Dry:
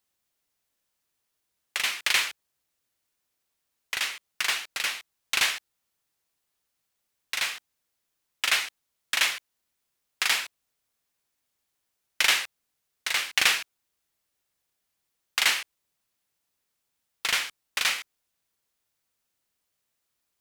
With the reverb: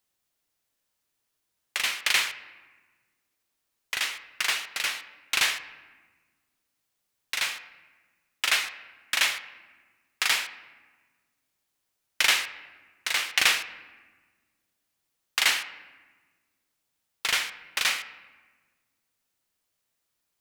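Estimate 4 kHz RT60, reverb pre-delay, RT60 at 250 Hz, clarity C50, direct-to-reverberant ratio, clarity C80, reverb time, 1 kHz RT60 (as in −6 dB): 0.90 s, 3 ms, 2.1 s, 13.5 dB, 11.0 dB, 14.5 dB, 1.4 s, 1.3 s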